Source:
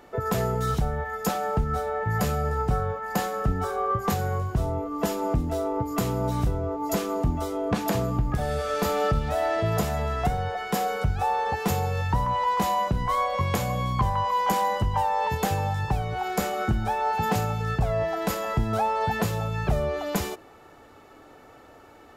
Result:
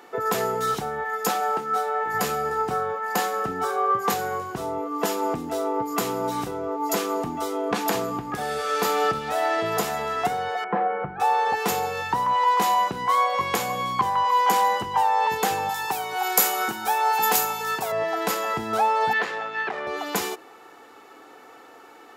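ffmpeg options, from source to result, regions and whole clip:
-filter_complex "[0:a]asettb=1/sr,asplit=3[s0][s1][s2];[s0]atrim=end=1.404[s3];[s1]atrim=start=1.4:end=2.14,asetpts=PTS-STARTPTS,afade=t=in:d=0.004:c=qsin,afade=t=out:st=0.736:d=0.004:c=qsin,highpass=260,asplit=2[s4][s5];[s5]adelay=19,volume=0.299[s6];[s4][s6]amix=inputs=2:normalize=0,atrim=end_sample=32634[s7];[s2]atrim=start=2.136[s8];[s3][s7]acrossfade=d=0.004:c1=hsin:c2=qsin[s9];[s9][s8]acrossfade=d=0.004:c1=qsin:c2=hsin,asettb=1/sr,asplit=3[s10][s11][s12];[s10]atrim=end=10.644[s13];[s11]atrim=start=10.64:end=11.2,asetpts=PTS-STARTPTS,afade=t=in:d=0.004:c=qsin,afade=t=out:st=0.556:d=0.004:c=qsin,lowpass=f=1700:w=0.5412,lowpass=f=1700:w=1.3066,aecho=1:1:5.8:0.53,atrim=end_sample=24696[s14];[s12]atrim=start=11.196[s15];[s13][s14]acrossfade=d=0.004:c1=hsin:c2=qsin[s16];[s16][s15]acrossfade=d=0.004:c1=qsin:c2=hsin,asettb=1/sr,asplit=3[s17][s18][s19];[s17]atrim=end=15.694[s20];[s18]atrim=start=15.69:end=17.92,asetpts=PTS-STARTPTS,afade=t=in:d=0.004:c=qsin,afade=t=out:st=2.226:d=0.004:c=qsin,highpass=63,aemphasis=mode=production:type=bsi,aeval=exprs='val(0)+0.00794*sin(2*PI*930*n/s)':c=same[s21];[s19]atrim=start=17.916[s22];[s20][s21]acrossfade=d=0.004:c1=hsin:c2=qsin[s23];[s23][s22]acrossfade=d=0.004:c1=qsin:c2=hsin,asettb=1/sr,asplit=3[s24][s25][s26];[s24]atrim=end=19.134[s27];[s25]atrim=start=19.13:end=19.87,asetpts=PTS-STARTPTS,afade=t=in:d=0.004:c=qsin,afade=t=out:st=0.736:d=0.004:c=qsin,equalizer=f=1800:t=o:w=0.47:g=9,aeval=exprs='(tanh(10*val(0)+0.35)-tanh(0.35))/10':c=same,highpass=320,lowpass=3700[s28];[s26]atrim=start=19.866[s29];[s27][s28]acrossfade=d=0.004:c1=hsin:c2=qsin[s30];[s30][s29]acrossfade=d=0.004:c1=qsin:c2=hsin,highpass=350,equalizer=f=600:w=7.4:g=-12,volume=1.78"

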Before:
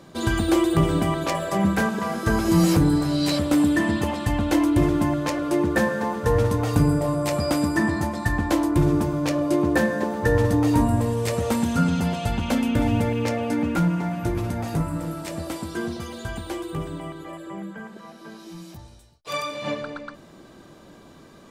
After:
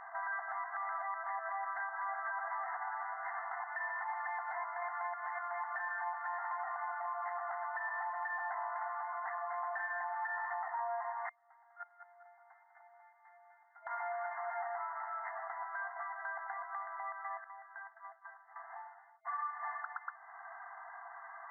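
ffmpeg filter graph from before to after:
-filter_complex "[0:a]asettb=1/sr,asplit=3[s0][s1][s2];[s0]atrim=end=11.294[s3];[s1]atrim=start=11.29:end=13.87,asetpts=PTS-STARTPTS,afade=t=in:d=0.004:c=qsin,afade=t=out:st=2.576:d=0.004:c=qsin,agate=range=0.0141:threshold=0.178:ratio=16:release=100:detection=peak,asplit=2[s4][s5];[s5]adelay=199,lowpass=f=4100:p=1,volume=0.316,asplit=2[s6][s7];[s7]adelay=199,lowpass=f=4100:p=1,volume=0.44,asplit=2[s8][s9];[s9]adelay=199,lowpass=f=4100:p=1,volume=0.44,asplit=2[s10][s11];[s11]adelay=199,lowpass=f=4100:p=1,volume=0.44,asplit=2[s12][s13];[s13]adelay=199,lowpass=f=4100:p=1,volume=0.44[s14];[s4][s6][s8][s10][s12][s14]amix=inputs=6:normalize=0,atrim=end_sample=113778[s15];[s2]atrim=start=13.866[s16];[s3][s15]acrossfade=d=0.004:c1=hsin:c2=qsin[s17];[s17][s16]acrossfade=d=0.004:c1=qsin:c2=hsin,asettb=1/sr,asplit=3[s18][s19][s20];[s18]atrim=end=17.444[s21];[s19]atrim=start=17.44:end=18.56,asetpts=PTS-STARTPTS,afade=t=in:d=0.004:c=qsin,afade=t=out:st=1.116:d=0.004:c=qsin,highpass=400,agate=range=0.0224:threshold=0.0141:ratio=3:release=100:detection=peak,acompressor=threshold=0.00355:ratio=6:attack=3.2:release=140:knee=1:detection=peak[s22];[s20]atrim=start=18.556[s23];[s21][s22]acrossfade=d=0.004:c1=hsin:c2=qsin[s24];[s24][s23]acrossfade=d=0.004:c1=qsin:c2=hsin,afftfilt=real='re*between(b*sr/4096,660,2100)':imag='im*between(b*sr/4096,660,2100)':win_size=4096:overlap=0.75,acompressor=threshold=0.00282:ratio=2,alimiter=level_in=4.73:limit=0.0631:level=0:latency=1:release=64,volume=0.211,volume=2.24"

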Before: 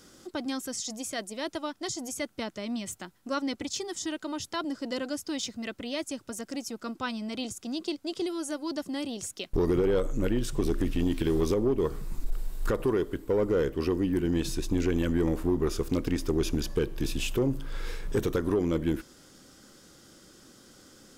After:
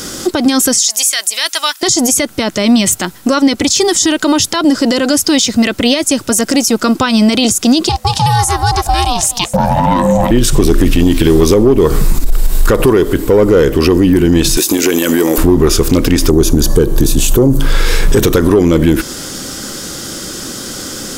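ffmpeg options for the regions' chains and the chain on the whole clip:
-filter_complex "[0:a]asettb=1/sr,asplit=3[s0][s1][s2];[s0]atrim=end=0.784[s3];[s1]atrim=start=0.78:end=1.83,asetpts=PTS-STARTPTS,afade=t=in:d=0.004:c=qsin,afade=t=out:st=1.046:d=0.004:c=qsin,highpass=1500,highshelf=f=8700:g=8.5[s4];[s2]atrim=start=1.826[s5];[s3][s4]acrossfade=d=0.004:c1=hsin:c2=qsin[s6];[s6][s5]acrossfade=d=0.004:c1=qsin:c2=hsin,asettb=1/sr,asplit=3[s7][s8][s9];[s7]atrim=end=7.894[s10];[s8]atrim=start=7.89:end=10.31,asetpts=PTS-STARTPTS,afade=t=in:d=0.004:c=qsin,afade=t=out:st=2.416:d=0.004:c=qsin,afreqshift=140,aeval=exprs='val(0)*sin(2*PI*360*n/s)':c=same,aecho=1:1:224:0.1,atrim=end_sample=106722[s11];[s9]atrim=start=10.306[s12];[s10][s11]acrossfade=d=0.004:c1=hsin:c2=qsin[s13];[s13][s12]acrossfade=d=0.004:c1=qsin:c2=hsin,asettb=1/sr,asplit=3[s14][s15][s16];[s14]atrim=end=14.574[s17];[s15]atrim=start=14.57:end=15.38,asetpts=PTS-STARTPTS,afade=t=in:d=0.004:c=qsin,afade=t=out:st=0.806:d=0.004:c=qsin,highpass=320,aemphasis=mode=production:type=50fm[s18];[s16]atrim=start=15.376[s19];[s17][s18]acrossfade=d=0.004:c1=hsin:c2=qsin[s20];[s20][s19]acrossfade=d=0.004:c1=qsin:c2=hsin,asettb=1/sr,asplit=3[s21][s22][s23];[s21]atrim=end=16.304[s24];[s22]atrim=start=16.3:end=17.61,asetpts=PTS-STARTPTS,afade=t=in:d=0.004:c=qsin,afade=t=out:st=1.306:d=0.004:c=qsin,equalizer=f=2500:t=o:w=1.2:g=-13.5,bandreject=f=5100:w=10[s25];[s23]atrim=start=17.606[s26];[s24][s25]acrossfade=d=0.004:c1=hsin:c2=qsin[s27];[s27][s26]acrossfade=d=0.004:c1=qsin:c2=hsin,highshelf=f=3900:g=5.5,acompressor=threshold=0.0316:ratio=4,alimiter=level_in=28.2:limit=0.891:release=50:level=0:latency=1,volume=0.891"

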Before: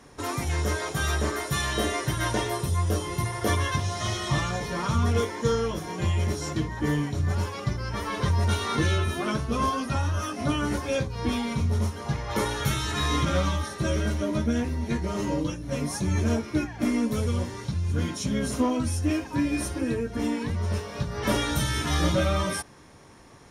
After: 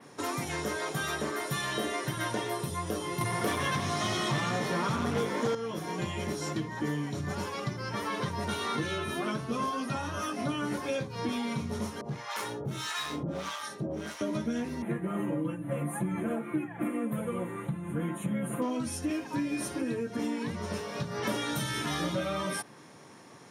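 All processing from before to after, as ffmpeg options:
-filter_complex "[0:a]asettb=1/sr,asplit=3[s0][s1][s2];[s0]atrim=end=3.214[s3];[s1]atrim=start=3.21:end=5.55,asetpts=PTS-STARTPTS,afade=t=in:d=0.004:c=qsin,afade=t=out:st=2.336:d=0.004:c=qsin,aeval=exprs='0.224*sin(PI/2*1.78*val(0)/0.224)':c=same,asplit=9[s4][s5][s6][s7][s8][s9][s10][s11][s12];[s5]adelay=92,afreqshift=55,volume=0.266[s13];[s6]adelay=184,afreqshift=110,volume=0.168[s14];[s7]adelay=276,afreqshift=165,volume=0.106[s15];[s8]adelay=368,afreqshift=220,volume=0.0668[s16];[s9]adelay=460,afreqshift=275,volume=0.0417[s17];[s10]adelay=552,afreqshift=330,volume=0.0263[s18];[s11]adelay=644,afreqshift=385,volume=0.0166[s19];[s12]adelay=736,afreqshift=440,volume=0.0105[s20];[s4][s13][s14][s15][s16][s17][s18][s19][s20]amix=inputs=9:normalize=0,atrim=end_sample=103194[s21];[s2]atrim=start=5.546[s22];[s3][s21]acrossfade=d=0.004:c1=hsin:c2=qsin[s23];[s23][s22]acrossfade=d=0.004:c1=qsin:c2=hsin,asettb=1/sr,asplit=3[s24][s25][s26];[s24]atrim=end=12.014[s27];[s25]atrim=start=12.01:end=14.21,asetpts=PTS-STARTPTS,afade=t=in:d=0.004:c=qsin,afade=t=out:st=2.196:d=0.004:c=qsin,volume=16.8,asoftclip=hard,volume=0.0596,acrossover=split=700[s28][s29];[s28]aeval=exprs='val(0)*(1-1/2+1/2*cos(2*PI*1.6*n/s))':c=same[s30];[s29]aeval=exprs='val(0)*(1-1/2-1/2*cos(2*PI*1.6*n/s))':c=same[s31];[s30][s31]amix=inputs=2:normalize=0[s32];[s26]atrim=start=14.206[s33];[s27][s32]acrossfade=d=0.004:c1=hsin:c2=qsin[s34];[s34][s33]acrossfade=d=0.004:c1=qsin:c2=hsin,asettb=1/sr,asplit=3[s35][s36][s37];[s35]atrim=end=14.824[s38];[s36]atrim=start=14.82:end=18.62,asetpts=PTS-STARTPTS,afade=t=in:d=0.004:c=qsin,afade=t=out:st=3.796:d=0.004:c=qsin,asuperstop=centerf=5100:order=4:qfactor=0.65,aecho=1:1:5.9:0.8,atrim=end_sample=167580[s39];[s37]atrim=start=18.616[s40];[s38][s39]acrossfade=d=0.004:c1=hsin:c2=qsin[s41];[s41][s40]acrossfade=d=0.004:c1=qsin:c2=hsin,highpass=f=130:w=0.5412,highpass=f=130:w=1.3066,adynamicequalizer=threshold=0.00398:dfrequency=6400:dqfactor=1.5:tfrequency=6400:tqfactor=1.5:attack=5:release=100:ratio=0.375:range=2:mode=cutabove:tftype=bell,acompressor=threshold=0.0316:ratio=3"

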